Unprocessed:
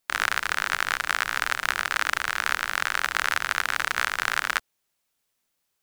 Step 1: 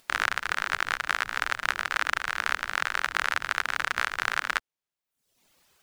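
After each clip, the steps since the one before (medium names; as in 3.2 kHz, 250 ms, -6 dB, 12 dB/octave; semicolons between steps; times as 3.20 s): reverb removal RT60 0.81 s; treble shelf 7 kHz -8.5 dB; upward compressor, threshold -49 dBFS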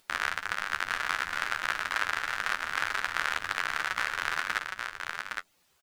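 flange 2 Hz, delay 9.6 ms, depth 3.8 ms, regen +30%; delay 814 ms -4.5 dB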